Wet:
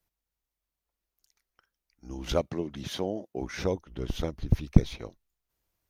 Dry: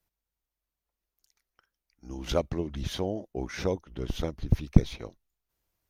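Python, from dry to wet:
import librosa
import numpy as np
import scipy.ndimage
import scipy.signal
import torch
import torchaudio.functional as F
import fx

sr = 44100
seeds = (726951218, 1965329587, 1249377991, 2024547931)

y = fx.highpass(x, sr, hz=140.0, slope=12, at=(2.41, 3.42))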